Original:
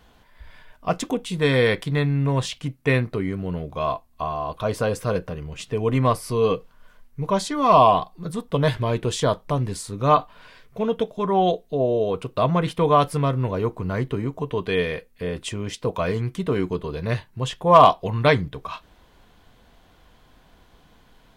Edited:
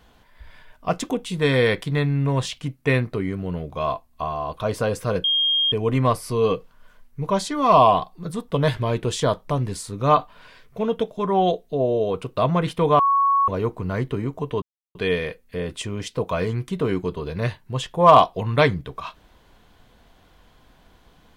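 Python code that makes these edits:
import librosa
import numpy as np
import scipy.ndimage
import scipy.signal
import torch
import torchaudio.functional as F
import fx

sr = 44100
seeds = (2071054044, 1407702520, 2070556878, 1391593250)

y = fx.edit(x, sr, fx.bleep(start_s=5.24, length_s=0.48, hz=3230.0, db=-17.0),
    fx.bleep(start_s=12.99, length_s=0.49, hz=1110.0, db=-15.0),
    fx.insert_silence(at_s=14.62, length_s=0.33), tone=tone)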